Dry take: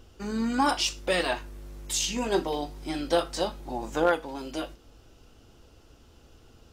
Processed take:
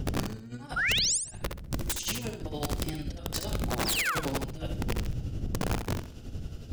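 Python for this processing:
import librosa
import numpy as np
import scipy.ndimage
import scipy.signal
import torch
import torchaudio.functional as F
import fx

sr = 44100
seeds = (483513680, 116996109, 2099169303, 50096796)

y = fx.octave_divider(x, sr, octaves=1, level_db=0.0)
y = fx.dmg_wind(y, sr, seeds[0], corner_hz=110.0, level_db=-30.0)
y = fx.peak_eq(y, sr, hz=1000.0, db=-9.0, octaves=0.67)
y = fx.over_compress(y, sr, threshold_db=-33.0, ratio=-0.5)
y = fx.spec_paint(y, sr, seeds[1], shape='fall', start_s=3.85, length_s=0.3, low_hz=1000.0, high_hz=5600.0, level_db=-29.0)
y = y * (1.0 - 0.64 / 2.0 + 0.64 / 2.0 * np.cos(2.0 * np.pi * 11.0 * (np.arange(len(y)) / sr)))
y = (np.mod(10.0 ** (25.5 / 20.0) * y + 1.0, 2.0) - 1.0) / 10.0 ** (25.5 / 20.0)
y = fx.spec_paint(y, sr, seeds[2], shape='rise', start_s=0.76, length_s=0.42, low_hz=1300.0, high_hz=9900.0, level_db=-30.0)
y = fx.echo_feedback(y, sr, ms=66, feedback_pct=31, wet_db=-6)
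y = F.gain(torch.from_numpy(y), 2.5).numpy()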